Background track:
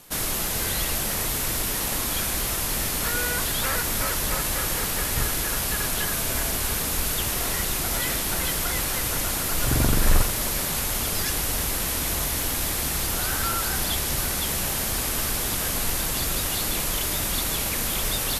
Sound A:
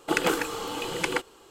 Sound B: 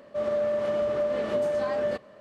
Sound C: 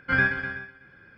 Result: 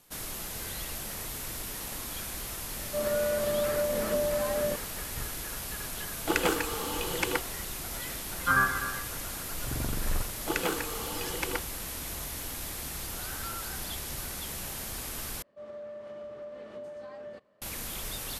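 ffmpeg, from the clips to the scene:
ffmpeg -i bed.wav -i cue0.wav -i cue1.wav -i cue2.wav -filter_complex "[2:a]asplit=2[link_01][link_02];[1:a]asplit=2[link_03][link_04];[0:a]volume=-11.5dB[link_05];[link_01]equalizer=frequency=160:width_type=o:width=0.77:gain=6[link_06];[3:a]lowpass=frequency=1200:width_type=q:width=13[link_07];[link_05]asplit=2[link_08][link_09];[link_08]atrim=end=15.424[link_10];[link_02]atrim=end=2.2,asetpts=PTS-STARTPTS,volume=-16dB[link_11];[link_09]atrim=start=17.616[link_12];[link_06]atrim=end=2.2,asetpts=PTS-STARTPTS,volume=-3dB,afade=type=in:duration=0.004:curve=hsin,afade=type=out:start_time=2.196:duration=0.004:curve=hsin,adelay=2790[link_13];[link_03]atrim=end=1.5,asetpts=PTS-STARTPTS,volume=-2.5dB,afade=type=in:duration=0.004:curve=hsin,afade=type=out:start_time=1.496:duration=0.004:curve=hsin,adelay=6190[link_14];[link_07]atrim=end=1.17,asetpts=PTS-STARTPTS,volume=-6dB,afade=type=in:duration=0.004:curve=hsin,afade=type=out:start_time=1.166:duration=0.004:curve=hsin,adelay=8380[link_15];[link_04]atrim=end=1.5,asetpts=PTS-STARTPTS,volume=-6dB,afade=type=in:duration=0.004:curve=hsin,afade=type=out:start_time=1.496:duration=0.004:curve=hsin,adelay=10390[link_16];[link_10][link_11]acrossfade=duration=0.004:curve1=hsin:curve2=hsin[link_17];[link_17][link_12]acrossfade=duration=0.004:curve1=hsin:curve2=hsin[link_18];[link_18][link_13][link_14][link_15][link_16]amix=inputs=5:normalize=0" out.wav

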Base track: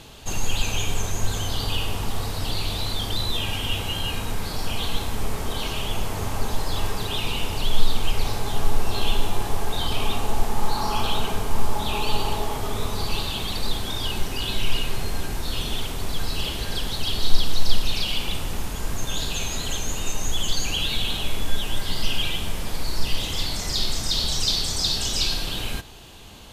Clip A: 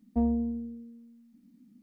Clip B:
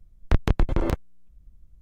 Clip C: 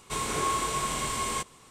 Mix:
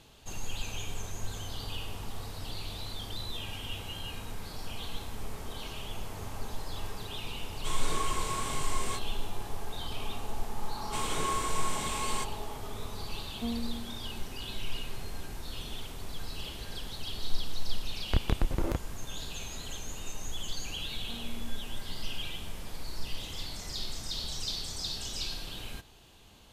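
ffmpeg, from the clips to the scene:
ffmpeg -i bed.wav -i cue0.wav -i cue1.wav -i cue2.wav -filter_complex "[3:a]asplit=2[link_01][link_02];[1:a]asplit=2[link_03][link_04];[0:a]volume=-12.5dB[link_05];[link_01]flanger=delay=19.5:depth=6:speed=1.9[link_06];[link_04]alimiter=level_in=3dB:limit=-24dB:level=0:latency=1:release=71,volume=-3dB[link_07];[link_06]atrim=end=1.7,asetpts=PTS-STARTPTS,volume=-2.5dB,afade=type=in:duration=0.004:curve=hsin,afade=type=out:start_time=1.696:duration=0.004:curve=hsin,adelay=332514S[link_08];[link_02]atrim=end=1.7,asetpts=PTS-STARTPTS,volume=-4.5dB,afade=type=in:duration=0.004:curve=hsin,afade=type=out:start_time=1.696:duration=0.004:curve=hsin,adelay=477162S[link_09];[link_03]atrim=end=1.82,asetpts=PTS-STARTPTS,volume=-8.5dB,afade=type=in:duration=0.004:curve=hsin,afade=type=out:start_time=1.816:duration=0.004:curve=hsin,adelay=13260[link_10];[2:a]atrim=end=1.81,asetpts=PTS-STARTPTS,volume=-7dB,afade=type=in:duration=0.004:curve=hsin,afade=type=out:start_time=1.806:duration=0.004:curve=hsin,adelay=17820[link_11];[link_07]atrim=end=1.82,asetpts=PTS-STARTPTS,volume=-12.5dB,afade=type=in:duration=0.004:curve=hsin,afade=type=out:start_time=1.816:duration=0.004:curve=hsin,adelay=20930[link_12];[link_05][link_08][link_09][link_10][link_11][link_12]amix=inputs=6:normalize=0" out.wav

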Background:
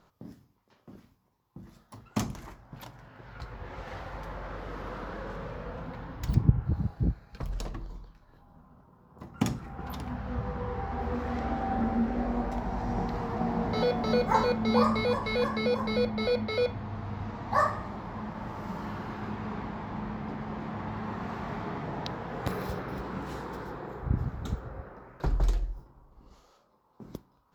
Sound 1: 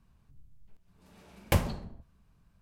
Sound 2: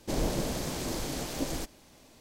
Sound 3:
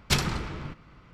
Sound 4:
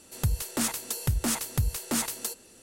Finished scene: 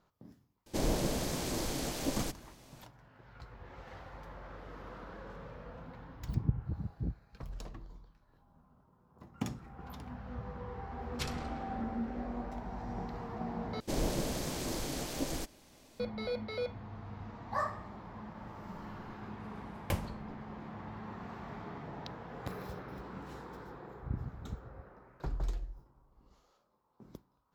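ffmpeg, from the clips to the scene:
ffmpeg -i bed.wav -i cue0.wav -i cue1.wav -i cue2.wav -filter_complex "[2:a]asplit=2[link_01][link_02];[0:a]volume=-9dB,asplit=2[link_03][link_04];[link_03]atrim=end=13.804[link_05];[link_02]atrim=end=2.2,asetpts=PTS-STARTPTS,volume=-3dB[link_06];[link_04]atrim=start=15.996[link_07];[link_01]atrim=end=2.2,asetpts=PTS-STARTPTS,volume=-1.5dB,afade=type=in:duration=0.004:curve=hsin,afade=type=out:start_time=2.196:duration=0.004:curve=hsin,adelay=660[link_08];[3:a]atrim=end=1.13,asetpts=PTS-STARTPTS,volume=-15dB,afade=type=in:duration=0.004:curve=hsin,afade=type=out:start_time=1.126:duration=0.004:curve=hsin,adelay=11090[link_09];[1:a]atrim=end=2.61,asetpts=PTS-STARTPTS,volume=-9dB,afade=type=in:duration=0.004:curve=hsin,afade=type=out:start_time=2.606:duration=0.004:curve=hsin,adelay=18380[link_10];[link_05][link_06]acrossfade=duration=0.004:curve1=hsin:curve2=hsin[link_11];[link_11][link_07]acrossfade=duration=0.004:curve1=hsin:curve2=hsin[link_12];[link_12][link_08][link_09][link_10]amix=inputs=4:normalize=0" out.wav

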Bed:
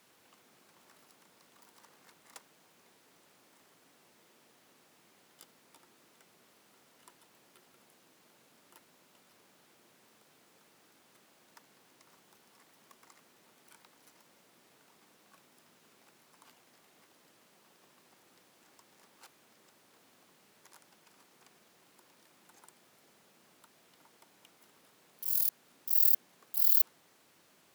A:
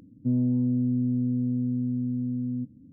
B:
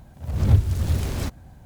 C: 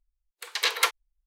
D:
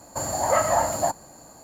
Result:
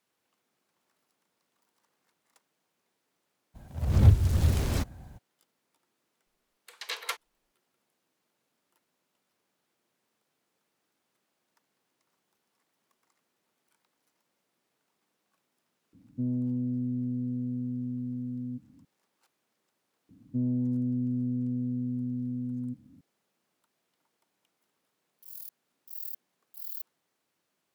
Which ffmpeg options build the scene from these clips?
ffmpeg -i bed.wav -i cue0.wav -i cue1.wav -i cue2.wav -filter_complex "[1:a]asplit=2[link_01][link_02];[0:a]volume=-14.5dB[link_03];[3:a]equalizer=frequency=640:width_type=o:width=0.3:gain=3[link_04];[2:a]atrim=end=1.65,asetpts=PTS-STARTPTS,volume=-1.5dB,afade=type=in:duration=0.02,afade=type=out:start_time=1.63:duration=0.02,adelay=3540[link_05];[link_04]atrim=end=1.26,asetpts=PTS-STARTPTS,volume=-11dB,afade=type=in:duration=0.004:curve=hsin,afade=type=out:start_time=1.256:duration=0.004:curve=hsin,adelay=276066S[link_06];[link_01]atrim=end=2.92,asetpts=PTS-STARTPTS,volume=-6dB,afade=type=in:duration=0.004:curve=hsin,afade=type=out:start_time=2.916:duration=0.004:curve=hsin,adelay=15930[link_07];[link_02]atrim=end=2.92,asetpts=PTS-STARTPTS,volume=-4.5dB,afade=type=in:duration=0.004:curve=hsin,afade=type=out:start_time=2.916:duration=0.004:curve=hsin,adelay=20090[link_08];[link_03][link_05][link_06][link_07][link_08]amix=inputs=5:normalize=0" out.wav

